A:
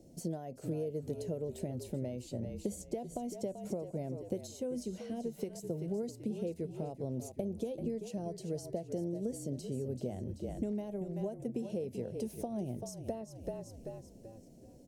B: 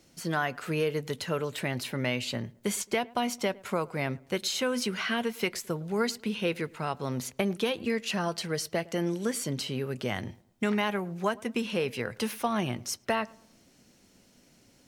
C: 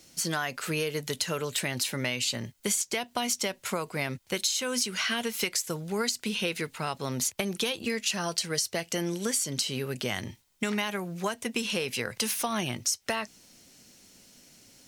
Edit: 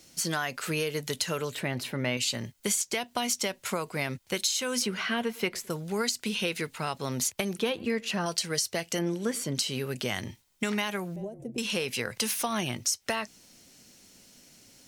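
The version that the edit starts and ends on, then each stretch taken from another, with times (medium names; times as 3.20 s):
C
1.55–2.17 s: from B
4.82–5.70 s: from B
7.59–8.26 s: from B
8.99–9.55 s: from B
11.16–11.58 s: from A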